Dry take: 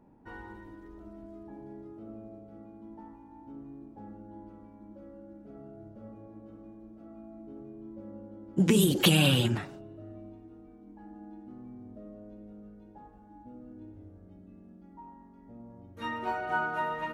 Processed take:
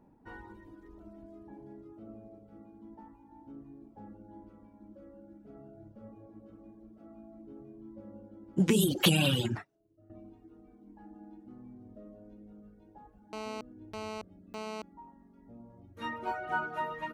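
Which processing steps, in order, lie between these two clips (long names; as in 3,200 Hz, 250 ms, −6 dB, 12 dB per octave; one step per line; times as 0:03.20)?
reverb reduction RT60 0.71 s
0:09.56–0:10.10: expander for the loud parts 2.5 to 1, over −52 dBFS
0:13.33–0:14.82: phone interference −38 dBFS
level −1.5 dB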